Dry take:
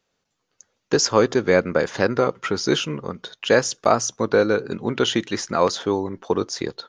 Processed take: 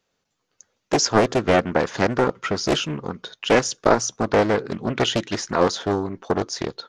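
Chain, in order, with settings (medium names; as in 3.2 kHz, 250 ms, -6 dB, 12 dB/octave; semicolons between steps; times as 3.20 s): loudspeaker Doppler distortion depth 0.83 ms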